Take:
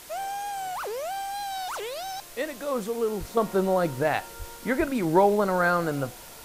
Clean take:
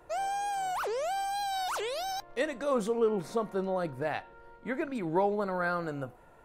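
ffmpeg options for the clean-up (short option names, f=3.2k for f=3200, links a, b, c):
-filter_complex "[0:a]asplit=3[a][b][c];[a]afade=t=out:st=3.19:d=0.02[d];[b]highpass=f=140:w=0.5412,highpass=f=140:w=1.3066,afade=t=in:st=3.19:d=0.02,afade=t=out:st=3.31:d=0.02[e];[c]afade=t=in:st=3.31:d=0.02[f];[d][e][f]amix=inputs=3:normalize=0,asplit=3[g][h][i];[g]afade=t=out:st=4.38:d=0.02[j];[h]highpass=f=140:w=0.5412,highpass=f=140:w=1.3066,afade=t=in:st=4.38:d=0.02,afade=t=out:st=4.5:d=0.02[k];[i]afade=t=in:st=4.5:d=0.02[l];[j][k][l]amix=inputs=3:normalize=0,asplit=3[m][n][o];[m]afade=t=out:st=4.78:d=0.02[p];[n]highpass=f=140:w=0.5412,highpass=f=140:w=1.3066,afade=t=in:st=4.78:d=0.02,afade=t=out:st=4.9:d=0.02[q];[o]afade=t=in:st=4.9:d=0.02[r];[p][q][r]amix=inputs=3:normalize=0,afwtdn=0.0056,asetnsamples=n=441:p=0,asendcmd='3.37 volume volume -8dB',volume=0dB"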